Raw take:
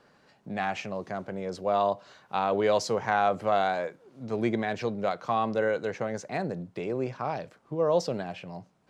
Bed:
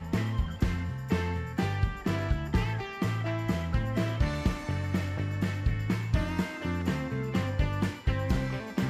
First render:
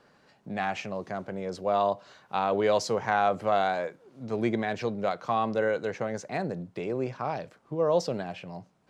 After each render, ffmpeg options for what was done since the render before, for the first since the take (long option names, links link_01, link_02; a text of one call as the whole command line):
ffmpeg -i in.wav -af anull out.wav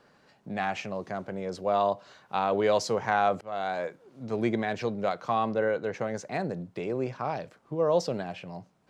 ffmpeg -i in.wav -filter_complex "[0:a]asettb=1/sr,asplit=3[link_01][link_02][link_03];[link_01]atrim=end=5.534[link_04];[link_02]atrim=start=5.53:end=5.94,asetpts=PTS-STARTPTS,afade=type=in:duration=0.004:curve=qsin,afade=type=out:start_time=0.406:duration=0.004:curve=qsin,lowpass=frequency=2600:poles=1[link_05];[link_03]atrim=start=5.936[link_06];[link_04][link_05]acrossfade=duration=0.004:curve1=hsin:curve2=qsin[link_07];[link_07][link_06]acrossfade=duration=0.004:curve1=qsin:curve2=hsin,asplit=2[link_08][link_09];[link_08]atrim=end=3.41,asetpts=PTS-STARTPTS,afade=type=out:start_time=3.406:duration=0.004:curve=hsin:silence=0.0668344[link_10];[link_09]atrim=start=3.41,asetpts=PTS-STARTPTS,afade=type=in:duration=0.45:silence=0.0668344[link_11];[link_10][link_11]concat=n=2:v=0:a=1" out.wav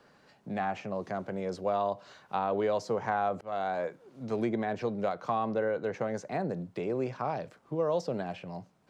ffmpeg -i in.wav -filter_complex "[0:a]acrossover=split=110|1500[link_01][link_02][link_03];[link_01]acompressor=threshold=-53dB:ratio=4[link_04];[link_02]acompressor=threshold=-26dB:ratio=4[link_05];[link_03]acompressor=threshold=-48dB:ratio=4[link_06];[link_04][link_05][link_06]amix=inputs=3:normalize=0" out.wav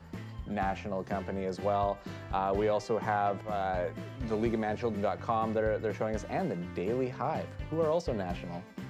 ffmpeg -i in.wav -i bed.wav -filter_complex "[1:a]volume=-13dB[link_01];[0:a][link_01]amix=inputs=2:normalize=0" out.wav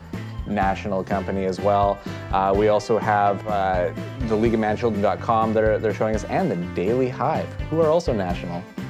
ffmpeg -i in.wav -af "volume=10.5dB" out.wav